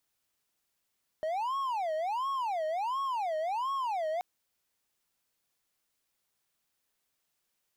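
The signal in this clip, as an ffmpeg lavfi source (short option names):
-f lavfi -i "aevalsrc='0.0422*(1-4*abs(mod((860.5*t-239.5/(2*PI*1.4)*sin(2*PI*1.4*t))+0.25,1)-0.5))':d=2.98:s=44100"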